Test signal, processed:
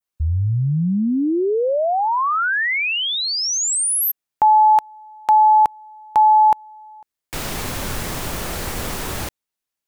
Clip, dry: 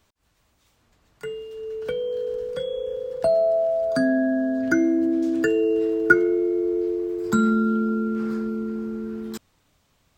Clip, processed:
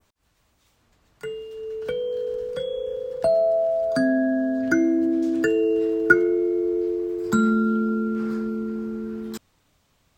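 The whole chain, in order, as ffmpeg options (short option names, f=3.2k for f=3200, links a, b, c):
-af "adynamicequalizer=threshold=0.0224:dfrequency=3900:dqfactor=0.78:tfrequency=3900:tqfactor=0.78:attack=5:release=100:ratio=0.375:range=2:mode=cutabove:tftype=bell"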